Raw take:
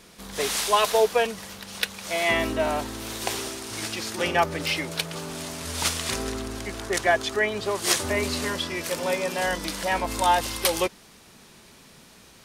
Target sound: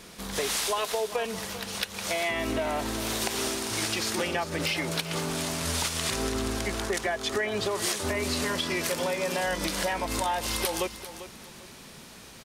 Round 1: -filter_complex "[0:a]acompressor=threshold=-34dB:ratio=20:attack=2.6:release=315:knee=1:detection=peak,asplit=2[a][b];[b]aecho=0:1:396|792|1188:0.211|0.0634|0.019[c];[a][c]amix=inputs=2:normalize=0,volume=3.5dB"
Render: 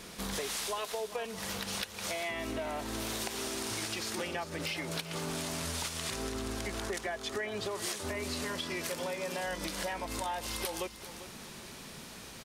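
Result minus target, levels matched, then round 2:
compressor: peak gain reduction +7.5 dB
-filter_complex "[0:a]acompressor=threshold=-26dB:ratio=20:attack=2.6:release=315:knee=1:detection=peak,asplit=2[a][b];[b]aecho=0:1:396|792|1188:0.211|0.0634|0.019[c];[a][c]amix=inputs=2:normalize=0,volume=3.5dB"

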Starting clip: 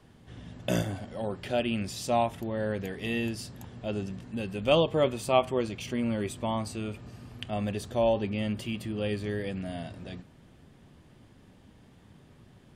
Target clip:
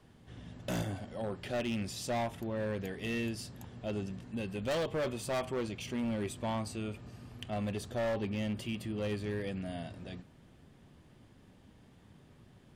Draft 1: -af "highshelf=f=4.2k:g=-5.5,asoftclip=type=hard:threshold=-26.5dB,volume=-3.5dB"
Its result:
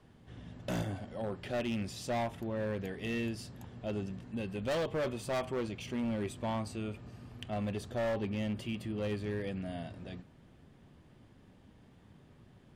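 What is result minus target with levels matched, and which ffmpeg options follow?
8000 Hz band -4.0 dB
-af "asoftclip=type=hard:threshold=-26.5dB,volume=-3.5dB"

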